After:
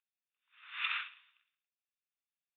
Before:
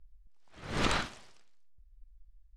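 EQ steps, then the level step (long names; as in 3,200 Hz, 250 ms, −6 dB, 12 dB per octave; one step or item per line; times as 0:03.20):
Butterworth high-pass 1,400 Hz 36 dB per octave
dynamic equaliser 2,300 Hz, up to +4 dB, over −46 dBFS, Q 2.2
Chebyshev low-pass with heavy ripple 3,700 Hz, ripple 9 dB
+2.5 dB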